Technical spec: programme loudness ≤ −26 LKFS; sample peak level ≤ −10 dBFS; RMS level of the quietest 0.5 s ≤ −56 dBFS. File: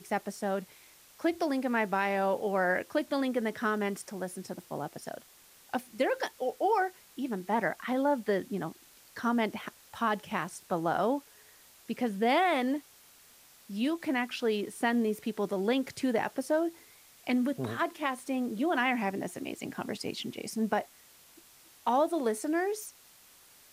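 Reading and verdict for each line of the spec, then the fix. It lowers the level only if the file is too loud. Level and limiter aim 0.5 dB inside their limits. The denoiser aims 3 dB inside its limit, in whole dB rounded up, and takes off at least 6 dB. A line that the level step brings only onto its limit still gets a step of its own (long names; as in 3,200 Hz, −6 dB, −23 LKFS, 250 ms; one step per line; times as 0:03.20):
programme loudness −31.5 LKFS: in spec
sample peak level −17.0 dBFS: in spec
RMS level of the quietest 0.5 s −58 dBFS: in spec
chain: no processing needed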